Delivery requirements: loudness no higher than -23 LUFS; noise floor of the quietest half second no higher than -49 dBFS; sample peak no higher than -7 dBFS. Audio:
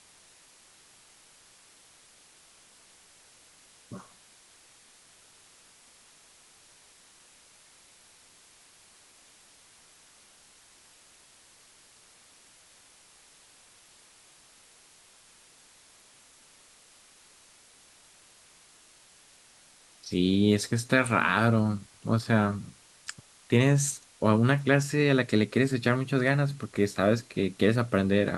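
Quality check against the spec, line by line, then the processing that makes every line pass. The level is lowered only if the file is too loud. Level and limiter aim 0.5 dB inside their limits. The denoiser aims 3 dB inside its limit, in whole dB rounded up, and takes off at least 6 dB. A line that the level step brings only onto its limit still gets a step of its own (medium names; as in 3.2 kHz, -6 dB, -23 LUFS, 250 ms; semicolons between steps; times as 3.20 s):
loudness -25.5 LUFS: pass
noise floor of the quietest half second -58 dBFS: pass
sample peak -7.5 dBFS: pass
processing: none needed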